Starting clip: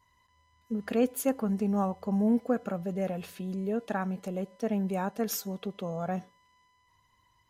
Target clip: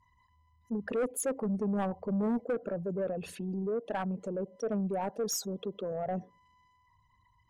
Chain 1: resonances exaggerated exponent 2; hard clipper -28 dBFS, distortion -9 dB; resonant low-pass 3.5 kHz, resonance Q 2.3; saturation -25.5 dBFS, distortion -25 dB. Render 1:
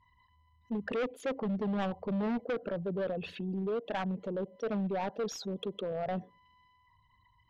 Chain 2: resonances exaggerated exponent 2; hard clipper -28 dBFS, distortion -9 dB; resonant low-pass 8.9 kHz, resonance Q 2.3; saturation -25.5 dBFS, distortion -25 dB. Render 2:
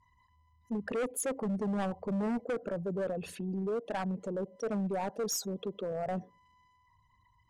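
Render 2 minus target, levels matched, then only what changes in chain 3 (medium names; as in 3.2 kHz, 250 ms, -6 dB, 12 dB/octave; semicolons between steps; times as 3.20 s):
hard clipper: distortion +9 dB
change: hard clipper -22 dBFS, distortion -18 dB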